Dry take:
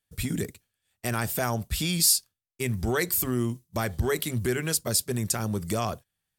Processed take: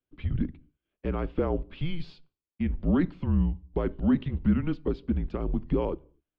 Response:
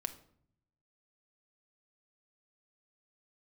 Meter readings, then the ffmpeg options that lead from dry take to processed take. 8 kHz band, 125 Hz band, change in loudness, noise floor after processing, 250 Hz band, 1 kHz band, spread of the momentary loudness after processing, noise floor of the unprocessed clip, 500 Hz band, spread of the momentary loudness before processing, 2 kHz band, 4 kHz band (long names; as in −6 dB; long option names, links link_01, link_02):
below −40 dB, −0.5 dB, −2.5 dB, below −85 dBFS, +4.0 dB, −6.5 dB, 9 LU, −84 dBFS, −2.0 dB, 11 LU, −12.0 dB, −18.5 dB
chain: -filter_complex "[0:a]equalizer=frequency=125:width_type=o:width=1:gain=8,equalizer=frequency=250:width_type=o:width=1:gain=6,equalizer=frequency=500:width_type=o:width=1:gain=10,equalizer=frequency=2000:width_type=o:width=1:gain=-8,asplit=2[link_01][link_02];[1:a]atrim=start_sample=2205,afade=type=out:start_time=0.31:duration=0.01,atrim=end_sample=14112,lowshelf=frequency=190:gain=10.5[link_03];[link_02][link_03]afir=irnorm=-1:irlink=0,volume=-11dB[link_04];[link_01][link_04]amix=inputs=2:normalize=0,highpass=frequency=190:width_type=q:width=0.5412,highpass=frequency=190:width_type=q:width=1.307,lowpass=frequency=3100:width_type=q:width=0.5176,lowpass=frequency=3100:width_type=q:width=0.7071,lowpass=frequency=3100:width_type=q:width=1.932,afreqshift=-170,volume=-6.5dB"